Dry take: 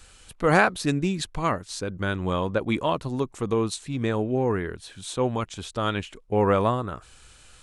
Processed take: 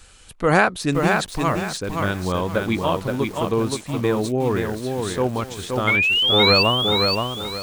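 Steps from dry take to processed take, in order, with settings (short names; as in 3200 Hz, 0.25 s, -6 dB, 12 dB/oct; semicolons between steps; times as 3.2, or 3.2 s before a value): painted sound rise, 5.87–6.63, 2100–4700 Hz -21 dBFS; lo-fi delay 0.523 s, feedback 35%, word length 7-bit, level -3.5 dB; gain +2.5 dB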